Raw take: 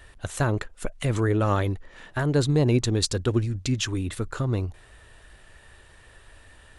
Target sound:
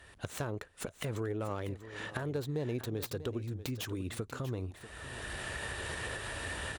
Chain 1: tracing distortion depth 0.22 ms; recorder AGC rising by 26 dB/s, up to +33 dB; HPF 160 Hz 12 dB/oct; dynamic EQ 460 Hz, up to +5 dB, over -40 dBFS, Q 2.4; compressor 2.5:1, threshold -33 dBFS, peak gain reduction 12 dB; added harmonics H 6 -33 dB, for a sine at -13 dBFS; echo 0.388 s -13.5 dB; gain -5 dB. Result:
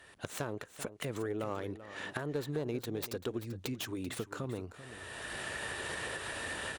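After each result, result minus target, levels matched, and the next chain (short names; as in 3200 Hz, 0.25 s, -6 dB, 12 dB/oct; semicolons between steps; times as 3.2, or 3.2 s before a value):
echo 0.253 s early; 125 Hz band -4.0 dB
tracing distortion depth 0.22 ms; recorder AGC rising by 26 dB/s, up to +33 dB; HPF 160 Hz 12 dB/oct; dynamic EQ 460 Hz, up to +5 dB, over -40 dBFS, Q 2.4; compressor 2.5:1, threshold -33 dBFS, peak gain reduction 12 dB; added harmonics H 6 -33 dB, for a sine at -13 dBFS; echo 0.641 s -13.5 dB; gain -5 dB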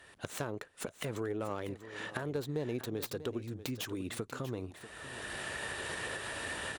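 125 Hz band -4.0 dB
tracing distortion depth 0.22 ms; recorder AGC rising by 26 dB/s, up to +33 dB; HPF 74 Hz 12 dB/oct; dynamic EQ 460 Hz, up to +5 dB, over -40 dBFS, Q 2.4; compressor 2.5:1, threshold -33 dBFS, peak gain reduction 12 dB; added harmonics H 6 -33 dB, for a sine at -13 dBFS; echo 0.641 s -13.5 dB; gain -5 dB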